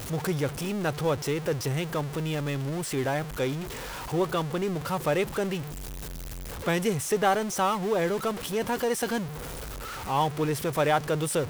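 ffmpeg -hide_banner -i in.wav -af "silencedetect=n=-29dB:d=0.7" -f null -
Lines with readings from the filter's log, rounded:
silence_start: 5.61
silence_end: 6.66 | silence_duration: 1.06
silence_start: 9.23
silence_end: 10.09 | silence_duration: 0.86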